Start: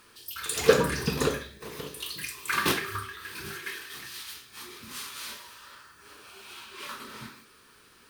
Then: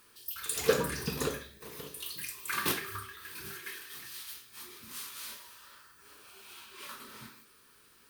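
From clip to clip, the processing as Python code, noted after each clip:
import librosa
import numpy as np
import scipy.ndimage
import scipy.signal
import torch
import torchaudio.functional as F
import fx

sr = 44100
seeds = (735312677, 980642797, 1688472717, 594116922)

y = fx.high_shelf(x, sr, hz=9800.0, db=11.0)
y = y * librosa.db_to_amplitude(-7.0)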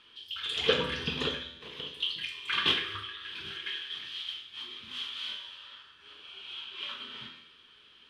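y = fx.lowpass_res(x, sr, hz=3200.0, q=9.1)
y = fx.comb_fb(y, sr, f0_hz=83.0, decay_s=0.99, harmonics='all', damping=0.0, mix_pct=70)
y = y * librosa.db_to_amplitude(7.5)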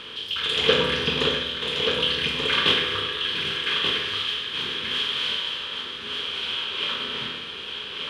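y = fx.bin_compress(x, sr, power=0.6)
y = y + 10.0 ** (-5.5 / 20.0) * np.pad(y, (int(1183 * sr / 1000.0), 0))[:len(y)]
y = y * librosa.db_to_amplitude(4.5)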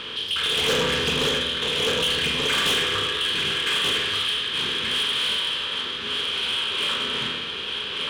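y = 10.0 ** (-23.5 / 20.0) * np.tanh(x / 10.0 ** (-23.5 / 20.0))
y = y * librosa.db_to_amplitude(5.0)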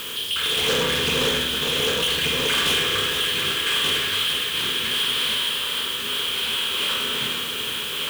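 y = x + 0.5 * 10.0 ** (-28.0 / 20.0) * np.diff(np.sign(x), prepend=np.sign(x[:1]))
y = y + 10.0 ** (-7.0 / 20.0) * np.pad(y, (int(458 * sr / 1000.0), 0))[:len(y)]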